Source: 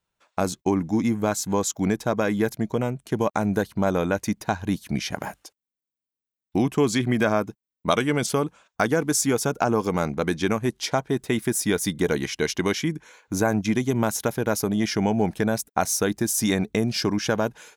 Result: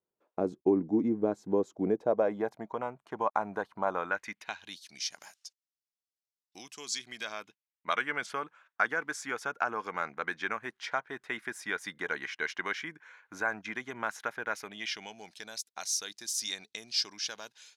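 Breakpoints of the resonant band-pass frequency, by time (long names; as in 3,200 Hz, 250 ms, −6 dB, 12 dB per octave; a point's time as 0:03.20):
resonant band-pass, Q 2
0:01.77 380 Hz
0:02.75 1,000 Hz
0:03.89 1,000 Hz
0:04.92 5,300 Hz
0:07.01 5,300 Hz
0:08.00 1,600 Hz
0:14.45 1,600 Hz
0:15.19 4,500 Hz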